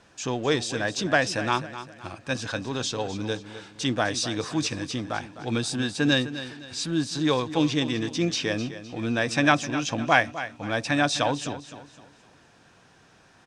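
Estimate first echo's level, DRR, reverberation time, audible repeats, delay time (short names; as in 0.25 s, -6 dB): -13.0 dB, none, none, 3, 0.256 s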